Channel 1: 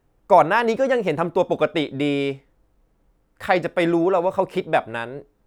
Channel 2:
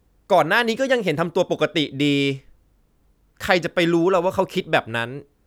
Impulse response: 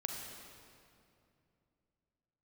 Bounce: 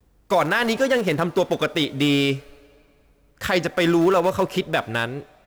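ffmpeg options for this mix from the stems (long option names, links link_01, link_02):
-filter_complex "[0:a]equalizer=frequency=160:width_type=o:width=2.7:gain=-10.5,aecho=1:1:6.8:0.57,aeval=exprs='val(0)*gte(abs(val(0)),0.0891)':channel_layout=same,volume=-10dB,asplit=2[link_01][link_02];[link_02]volume=-7.5dB[link_03];[1:a]volume=-1,adelay=6.2,volume=1.5dB[link_04];[2:a]atrim=start_sample=2205[link_05];[link_03][link_05]afir=irnorm=-1:irlink=0[link_06];[link_01][link_04][link_06]amix=inputs=3:normalize=0,alimiter=limit=-9.5dB:level=0:latency=1:release=25"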